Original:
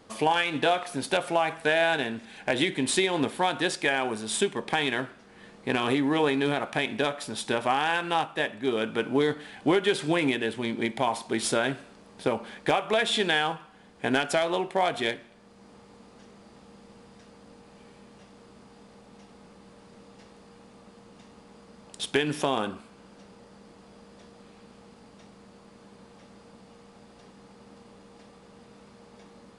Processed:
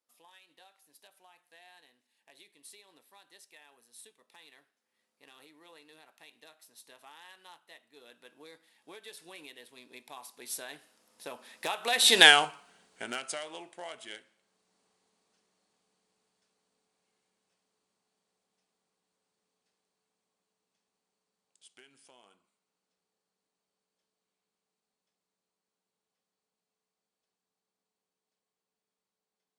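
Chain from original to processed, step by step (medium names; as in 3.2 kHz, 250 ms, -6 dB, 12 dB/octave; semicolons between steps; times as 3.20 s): Doppler pass-by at 12.26 s, 28 m/s, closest 2.7 m; RIAA curve recording; trim +6.5 dB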